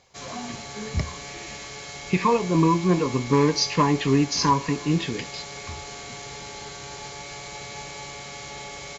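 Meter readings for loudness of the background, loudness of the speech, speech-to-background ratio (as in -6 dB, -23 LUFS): -36.5 LUFS, -22.5 LUFS, 14.0 dB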